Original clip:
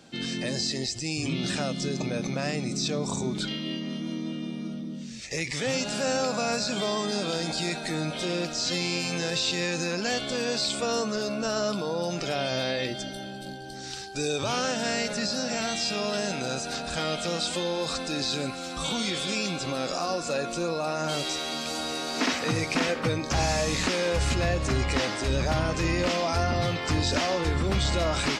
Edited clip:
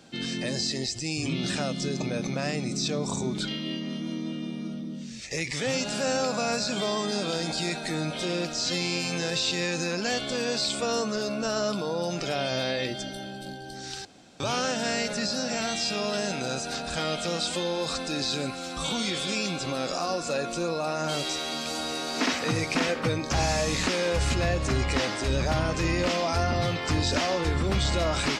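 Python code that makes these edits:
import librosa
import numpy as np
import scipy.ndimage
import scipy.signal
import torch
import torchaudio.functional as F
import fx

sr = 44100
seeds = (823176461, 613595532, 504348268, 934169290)

y = fx.edit(x, sr, fx.room_tone_fill(start_s=14.05, length_s=0.35), tone=tone)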